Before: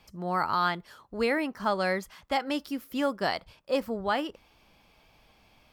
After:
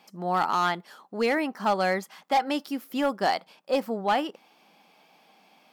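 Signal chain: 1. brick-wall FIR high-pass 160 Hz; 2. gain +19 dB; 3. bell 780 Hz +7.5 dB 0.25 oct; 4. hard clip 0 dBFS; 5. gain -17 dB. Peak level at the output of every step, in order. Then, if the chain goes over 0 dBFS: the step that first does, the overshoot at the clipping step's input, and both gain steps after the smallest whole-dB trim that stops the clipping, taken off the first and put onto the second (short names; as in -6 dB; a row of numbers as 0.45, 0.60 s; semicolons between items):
-14.5, +4.5, +6.5, 0.0, -17.0 dBFS; step 2, 6.5 dB; step 2 +12 dB, step 5 -10 dB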